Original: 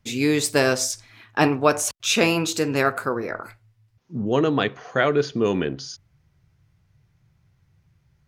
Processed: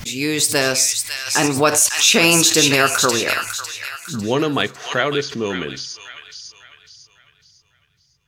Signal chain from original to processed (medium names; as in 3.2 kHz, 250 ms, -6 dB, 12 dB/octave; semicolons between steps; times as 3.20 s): Doppler pass-by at 2.75 s, 5 m/s, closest 5.6 m; treble shelf 2.1 kHz +10 dB; feedback echo behind a high-pass 551 ms, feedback 38%, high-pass 1.8 kHz, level -5 dB; loudness maximiser +7.5 dB; swell ahead of each attack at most 110 dB/s; trim -2 dB